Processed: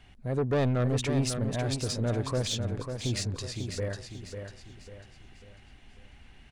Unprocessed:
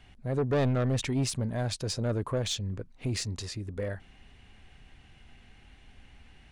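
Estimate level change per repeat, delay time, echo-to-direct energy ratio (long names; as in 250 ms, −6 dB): −8.0 dB, 546 ms, −6.5 dB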